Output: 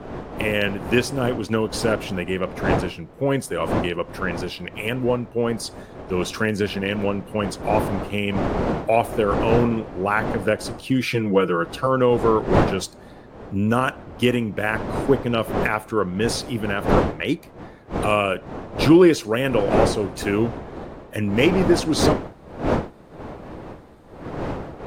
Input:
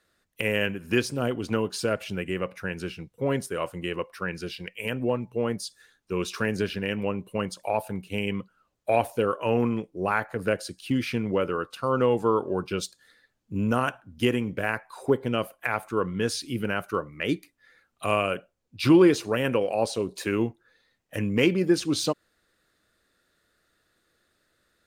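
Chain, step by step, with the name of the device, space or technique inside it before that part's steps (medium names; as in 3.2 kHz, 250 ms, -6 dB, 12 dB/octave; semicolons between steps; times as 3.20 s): 11.02–11.87 s: comb 6.2 ms, depth 90%; smartphone video outdoors (wind noise 560 Hz -32 dBFS; level rider gain up to 5 dB; AAC 96 kbps 44.1 kHz)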